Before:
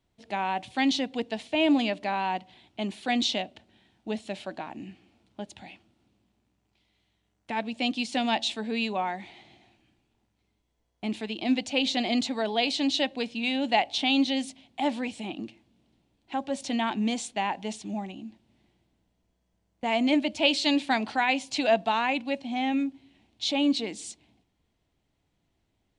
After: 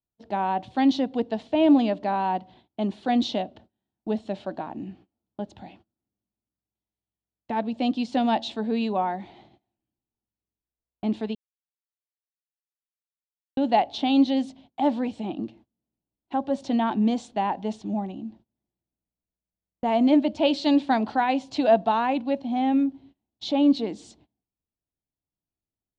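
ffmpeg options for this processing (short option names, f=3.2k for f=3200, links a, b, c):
-filter_complex "[0:a]asplit=3[a][b][c];[a]atrim=end=11.35,asetpts=PTS-STARTPTS,afade=t=out:st=11.346:d=0.004:c=hsin[d];[b]atrim=start=11.35:end=13.57,asetpts=PTS-STARTPTS,volume=0[e];[c]atrim=start=13.57,asetpts=PTS-STARTPTS,afade=t=in:d=0.004:c=hsin[f];[d][e][f]concat=n=3:v=0:a=1,agate=range=-25dB:threshold=-54dB:ratio=16:detection=peak,lowpass=3.1k,equalizer=f=2.3k:t=o:w=1.1:g=-13.5,volume=5.5dB"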